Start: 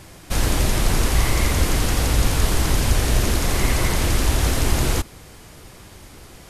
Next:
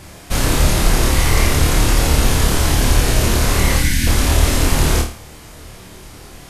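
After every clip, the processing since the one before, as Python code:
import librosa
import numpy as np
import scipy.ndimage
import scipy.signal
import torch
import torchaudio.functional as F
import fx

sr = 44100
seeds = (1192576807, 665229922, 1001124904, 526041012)

y = fx.spec_box(x, sr, start_s=3.78, length_s=0.29, low_hz=330.0, high_hz=1400.0, gain_db=-21)
y = fx.room_flutter(y, sr, wall_m=4.6, rt60_s=0.4)
y = F.gain(torch.from_numpy(y), 3.0).numpy()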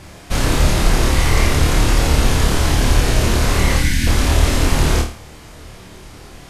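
y = fx.high_shelf(x, sr, hz=10000.0, db=-10.5)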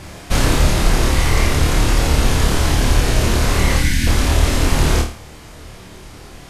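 y = fx.rider(x, sr, range_db=4, speed_s=0.5)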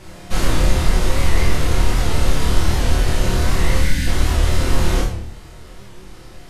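y = fx.room_shoebox(x, sr, seeds[0], volume_m3=81.0, walls='mixed', distance_m=0.94)
y = fx.record_warp(y, sr, rpm=78.0, depth_cents=100.0)
y = F.gain(torch.from_numpy(y), -8.0).numpy()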